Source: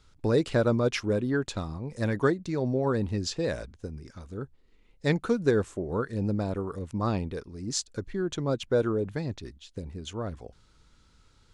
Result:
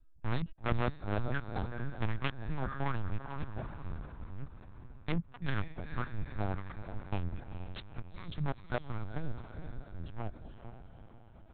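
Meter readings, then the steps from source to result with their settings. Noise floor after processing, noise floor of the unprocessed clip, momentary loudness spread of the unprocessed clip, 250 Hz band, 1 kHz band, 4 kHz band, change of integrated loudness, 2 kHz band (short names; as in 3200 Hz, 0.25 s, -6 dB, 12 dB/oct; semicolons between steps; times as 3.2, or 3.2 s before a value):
-55 dBFS, -61 dBFS, 15 LU, -12.0 dB, -4.0 dB, -11.0 dB, -10.5 dB, -5.5 dB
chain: Wiener smoothing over 41 samples; Chebyshev band-stop 170–610 Hz, order 5; dynamic EQ 280 Hz, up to +3 dB, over -53 dBFS, Q 3.4; step gate "xxxx.xx.xxx.x." 118 bpm -60 dB; diffused feedback echo 0.463 s, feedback 50%, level -9 dB; wavefolder -27 dBFS; LPC vocoder at 8 kHz pitch kept; gain +2 dB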